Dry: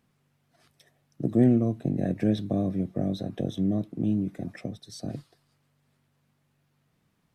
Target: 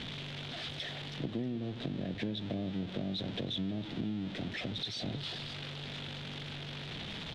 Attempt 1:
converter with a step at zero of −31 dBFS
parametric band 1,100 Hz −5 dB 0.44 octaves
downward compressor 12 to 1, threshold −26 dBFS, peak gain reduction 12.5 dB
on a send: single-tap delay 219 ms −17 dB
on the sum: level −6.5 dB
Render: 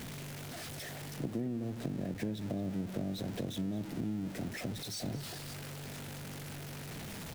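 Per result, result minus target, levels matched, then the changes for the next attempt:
4,000 Hz band −7.0 dB; echo 98 ms early
add after converter with a step at zero: low-pass with resonance 3,500 Hz, resonance Q 4.2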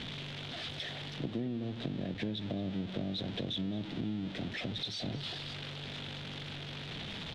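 echo 98 ms early
change: single-tap delay 317 ms −17 dB

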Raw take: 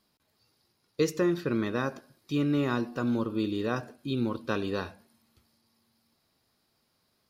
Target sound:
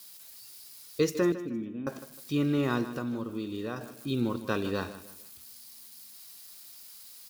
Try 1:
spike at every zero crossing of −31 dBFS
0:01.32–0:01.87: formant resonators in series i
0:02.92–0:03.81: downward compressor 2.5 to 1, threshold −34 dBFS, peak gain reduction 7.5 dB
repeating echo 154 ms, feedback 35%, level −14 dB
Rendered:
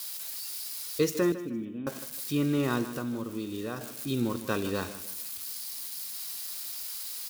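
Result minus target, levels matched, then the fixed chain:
spike at every zero crossing: distortion +11 dB
spike at every zero crossing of −42.5 dBFS
0:01.32–0:01.87: formant resonators in series i
0:02.92–0:03.81: downward compressor 2.5 to 1, threshold −34 dBFS, peak gain reduction 7.5 dB
repeating echo 154 ms, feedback 35%, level −14 dB

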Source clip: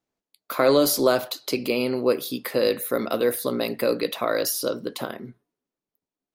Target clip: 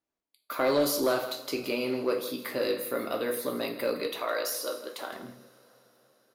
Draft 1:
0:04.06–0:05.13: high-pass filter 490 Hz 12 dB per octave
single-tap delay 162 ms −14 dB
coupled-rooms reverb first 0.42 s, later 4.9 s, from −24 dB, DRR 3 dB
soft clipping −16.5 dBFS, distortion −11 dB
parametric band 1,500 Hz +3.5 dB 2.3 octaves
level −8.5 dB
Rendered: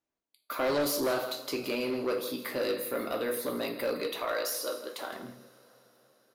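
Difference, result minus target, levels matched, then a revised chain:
soft clipping: distortion +9 dB
0:04.06–0:05.13: high-pass filter 490 Hz 12 dB per octave
single-tap delay 162 ms −14 dB
coupled-rooms reverb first 0.42 s, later 4.9 s, from −24 dB, DRR 3 dB
soft clipping −9 dBFS, distortion −20 dB
parametric band 1,500 Hz +3.5 dB 2.3 octaves
level −8.5 dB

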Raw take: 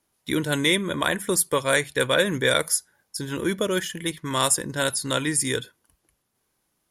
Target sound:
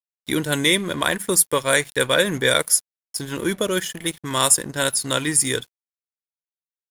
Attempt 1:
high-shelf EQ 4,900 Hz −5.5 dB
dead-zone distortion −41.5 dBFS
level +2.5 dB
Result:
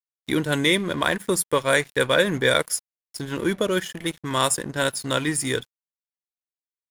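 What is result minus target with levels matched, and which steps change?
8,000 Hz band −5.5 dB
change: high-shelf EQ 4,900 Hz +4.5 dB

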